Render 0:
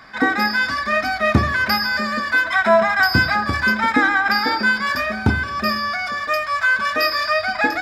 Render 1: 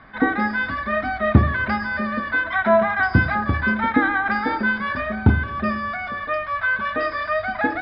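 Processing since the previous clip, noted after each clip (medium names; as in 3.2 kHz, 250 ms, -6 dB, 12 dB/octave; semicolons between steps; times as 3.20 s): steep low-pass 3.8 kHz 36 dB/octave; tilt EQ -2 dB/octave; band-stop 2.5 kHz, Q 29; trim -3 dB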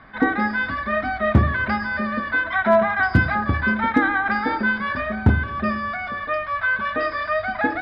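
hard clipper -7 dBFS, distortion -21 dB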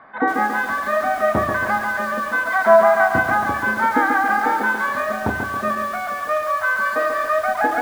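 band-pass filter 800 Hz, Q 1.1; bit-crushed delay 138 ms, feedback 55%, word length 7-bit, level -5 dB; trim +5.5 dB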